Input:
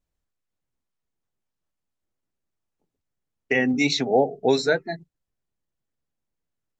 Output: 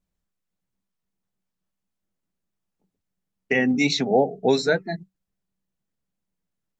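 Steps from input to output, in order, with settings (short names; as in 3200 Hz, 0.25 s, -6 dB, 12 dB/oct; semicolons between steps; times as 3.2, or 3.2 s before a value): bell 190 Hz +14 dB 0.24 oct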